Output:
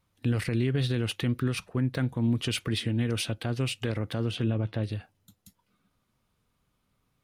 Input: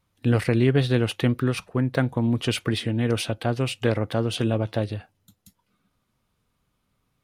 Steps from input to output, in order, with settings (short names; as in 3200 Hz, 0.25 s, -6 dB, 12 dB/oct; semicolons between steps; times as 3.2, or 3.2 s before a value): 4.31–4.84 tone controls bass +2 dB, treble -12 dB; limiter -14.5 dBFS, peak gain reduction 6.5 dB; dynamic EQ 710 Hz, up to -7 dB, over -41 dBFS, Q 0.79; gain -1.5 dB